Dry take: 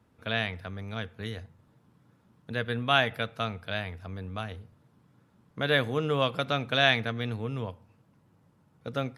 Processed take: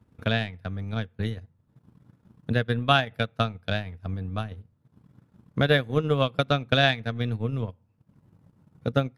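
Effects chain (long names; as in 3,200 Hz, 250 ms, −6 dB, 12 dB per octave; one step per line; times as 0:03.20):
transient designer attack +9 dB, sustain −12 dB
low-shelf EQ 300 Hz +9.5 dB
level −2.5 dB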